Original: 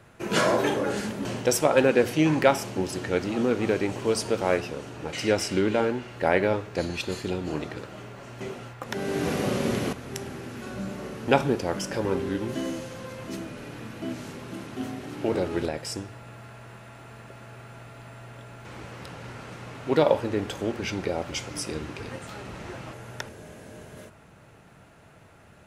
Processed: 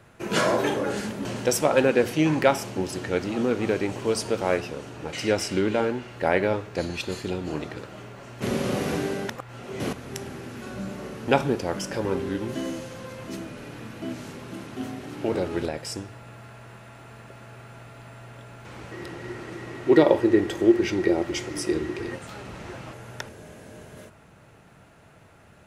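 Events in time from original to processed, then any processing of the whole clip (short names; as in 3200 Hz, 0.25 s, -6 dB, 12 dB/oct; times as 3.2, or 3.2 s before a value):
0.96–1.38 echo throw 0.39 s, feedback 40%, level -9.5 dB
8.42–9.8 reverse
18.91–22.15 small resonant body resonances 350/1900 Hz, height 18 dB, ringing for 90 ms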